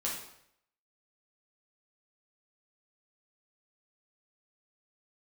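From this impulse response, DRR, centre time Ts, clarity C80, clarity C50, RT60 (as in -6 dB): -5.0 dB, 42 ms, 7.0 dB, 3.0 dB, 0.70 s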